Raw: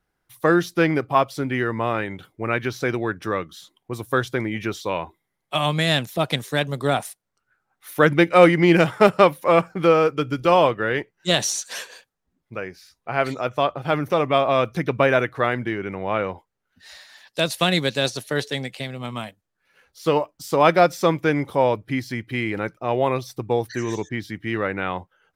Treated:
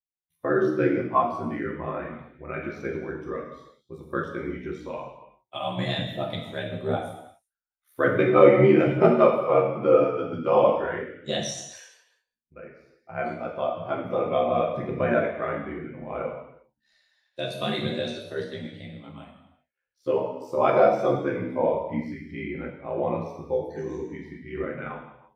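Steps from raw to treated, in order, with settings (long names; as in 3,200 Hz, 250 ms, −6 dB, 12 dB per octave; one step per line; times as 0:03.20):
ring modulation 35 Hz
reverb whose tail is shaped and stops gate 430 ms falling, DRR −2.5 dB
every bin expanded away from the loudest bin 1.5 to 1
level −2.5 dB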